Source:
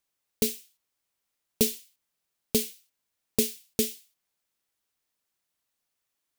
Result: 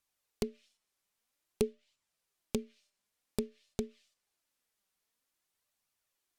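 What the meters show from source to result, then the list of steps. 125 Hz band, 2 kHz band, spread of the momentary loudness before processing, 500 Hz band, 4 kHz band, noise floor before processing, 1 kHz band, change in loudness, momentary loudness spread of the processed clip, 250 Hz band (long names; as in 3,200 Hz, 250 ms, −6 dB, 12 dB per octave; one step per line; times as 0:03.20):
−5.0 dB, −11.0 dB, 14 LU, −5.5 dB, −16.0 dB, −82 dBFS, −2.0 dB, −11.0 dB, 5 LU, −7.0 dB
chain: tuned comb filter 600 Hz, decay 0.43 s, mix 50%
in parallel at +2 dB: downward compressor, threshold −38 dBFS, peak gain reduction 13.5 dB
on the sum: flanger 0.51 Hz, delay 0.7 ms, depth 4.7 ms, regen +57%
treble cut that deepens with the level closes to 740 Hz, closed at −32 dBFS
level +2 dB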